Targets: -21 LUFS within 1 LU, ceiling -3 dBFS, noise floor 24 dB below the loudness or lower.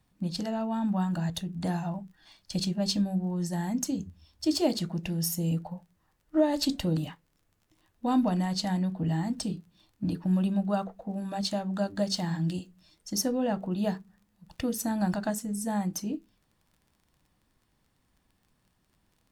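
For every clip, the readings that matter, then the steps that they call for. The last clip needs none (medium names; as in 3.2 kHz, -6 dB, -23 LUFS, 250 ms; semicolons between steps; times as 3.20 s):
tick rate 20 per s; loudness -30.5 LUFS; peak level -13.0 dBFS; loudness target -21.0 LUFS
-> de-click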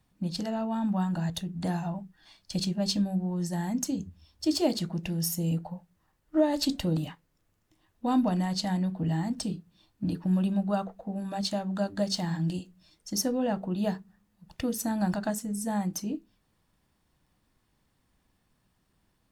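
tick rate 0.26 per s; loudness -30.5 LUFS; peak level -13.0 dBFS; loudness target -21.0 LUFS
-> trim +9.5 dB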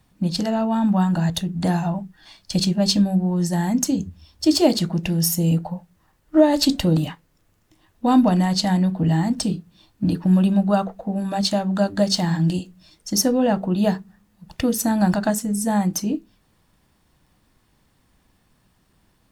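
loudness -21.0 LUFS; peak level -3.5 dBFS; noise floor -63 dBFS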